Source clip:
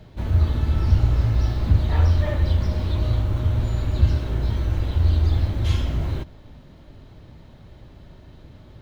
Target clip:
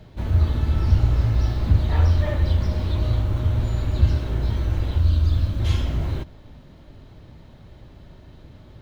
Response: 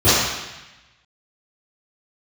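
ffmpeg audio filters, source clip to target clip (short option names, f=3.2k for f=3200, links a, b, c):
-filter_complex "[0:a]asettb=1/sr,asplit=3[a][b][c];[a]atrim=end=5.004[d];[b]atrim=start=5:end=5.6,asetpts=PTS-STARTPTS,afade=t=in:d=0.004:c=qsin,afade=t=out:st=0.596:d=0.004:c=qsin,equalizer=f=400:t=o:w=0.33:g=-11,equalizer=f=800:t=o:w=0.33:g=-11,equalizer=f=2k:t=o:w=0.33:g=-8[e];[c]atrim=start=5.596[f];[d][e]acrossfade=d=0.004:c1=hsin:c2=qsin[g];[g][f]acrossfade=d=0.004:c1=qsin:c2=hsin"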